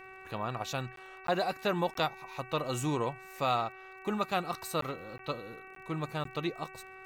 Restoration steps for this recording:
click removal
hum removal 379.3 Hz, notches 7
repair the gap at 0:00.96/0:01.27/0:01.94/0:04.81/0:05.18/0:05.75/0:06.24, 13 ms

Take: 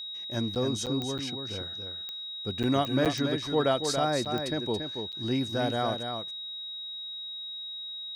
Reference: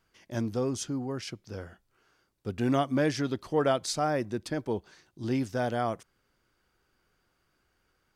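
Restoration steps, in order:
click removal
notch filter 3,800 Hz, Q 30
repair the gap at 0:00.55/0:00.86/0:01.18/0:02.63/0:03.05/0:04.25/0:05.12, 7.7 ms
echo removal 281 ms −6.5 dB

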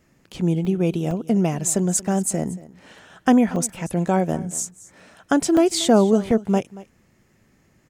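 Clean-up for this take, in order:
repair the gap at 0:00.65/0:01.11/0:01.59/0:02.61/0:03.56/0:05.00/0:05.57/0:06.31, 2.2 ms
echo removal 231 ms −19 dB

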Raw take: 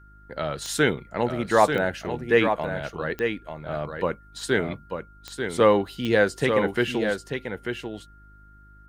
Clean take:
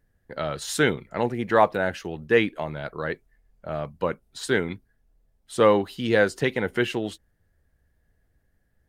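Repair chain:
click removal
hum removal 51.1 Hz, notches 7
notch filter 1,400 Hz, Q 30
echo removal 890 ms −6.5 dB

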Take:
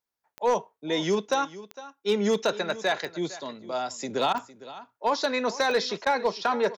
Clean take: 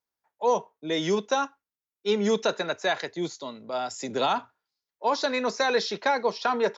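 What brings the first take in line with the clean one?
clipped peaks rebuilt −16.5 dBFS
click removal
repair the gap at 0:04.33/0:06.05, 13 ms
echo removal 457 ms −17 dB

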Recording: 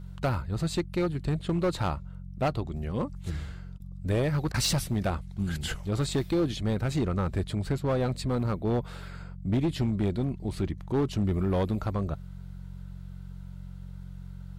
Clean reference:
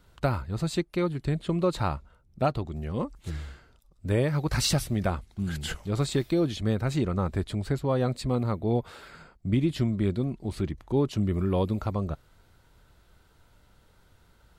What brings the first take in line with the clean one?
clipped peaks rebuilt −21 dBFS
hum removal 45.5 Hz, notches 4
repair the gap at 0:03.78/0:04.52, 20 ms

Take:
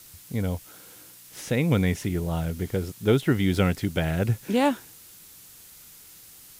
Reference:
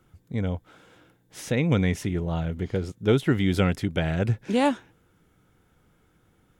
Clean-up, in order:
noise reduction from a noise print 15 dB

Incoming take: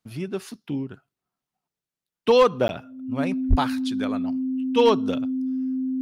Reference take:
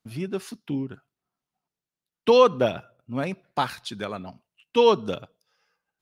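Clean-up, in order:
clipped peaks rebuilt −9.5 dBFS
notch filter 260 Hz, Q 30
high-pass at the plosives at 0:03.49
repair the gap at 0:02.68, 11 ms

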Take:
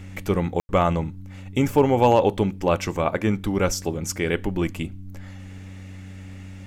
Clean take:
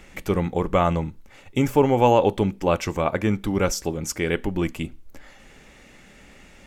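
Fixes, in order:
clipped peaks rebuilt −7.5 dBFS
hum removal 94.7 Hz, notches 3
ambience match 0:00.60–0:00.69

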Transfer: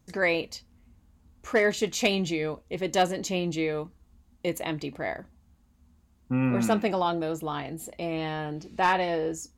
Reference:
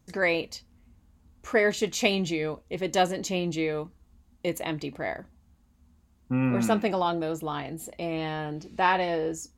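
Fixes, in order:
clipped peaks rebuilt −14 dBFS

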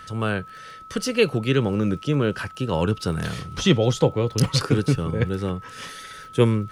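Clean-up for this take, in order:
click removal
notch filter 1,300 Hz, Q 30

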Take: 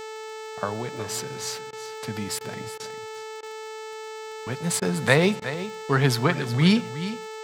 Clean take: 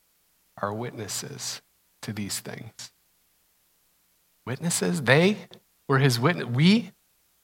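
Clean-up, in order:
click removal
hum removal 437.6 Hz, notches 19
repair the gap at 0:01.71/0:02.39/0:02.78/0:03.41/0:04.80/0:05.40, 17 ms
echo removal 365 ms −12.5 dB

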